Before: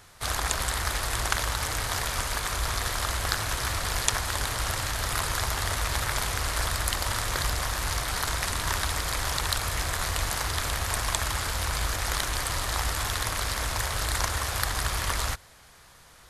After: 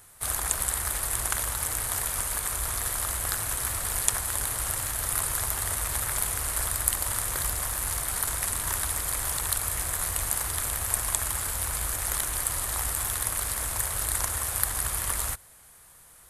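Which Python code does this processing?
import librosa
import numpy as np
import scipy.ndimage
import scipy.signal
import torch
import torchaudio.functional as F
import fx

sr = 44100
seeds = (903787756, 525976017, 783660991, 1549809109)

y = fx.high_shelf_res(x, sr, hz=7100.0, db=11.0, q=1.5)
y = F.gain(torch.from_numpy(y), -5.0).numpy()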